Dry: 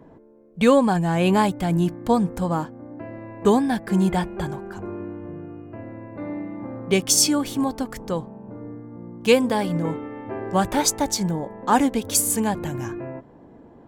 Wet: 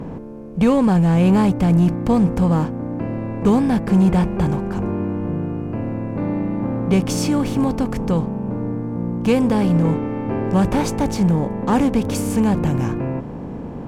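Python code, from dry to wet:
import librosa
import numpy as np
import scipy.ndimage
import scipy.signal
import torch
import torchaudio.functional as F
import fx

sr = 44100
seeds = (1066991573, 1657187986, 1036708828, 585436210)

p1 = fx.bin_compress(x, sr, power=0.6)
p2 = fx.bass_treble(p1, sr, bass_db=14, treble_db=-10)
p3 = np.clip(p2, -10.0 ** (-8.5 / 20.0), 10.0 ** (-8.5 / 20.0))
p4 = p2 + F.gain(torch.from_numpy(p3), -6.0).numpy()
y = F.gain(torch.from_numpy(p4), -8.0).numpy()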